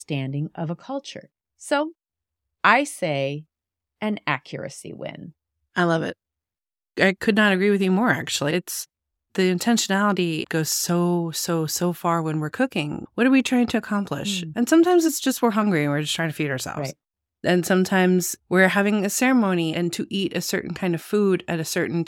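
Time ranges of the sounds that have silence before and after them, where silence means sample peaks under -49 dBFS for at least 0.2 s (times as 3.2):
1.6–1.92
2.64–3.43
4.01–5.31
5.75–6.13
6.97–8.85
9.35–16.93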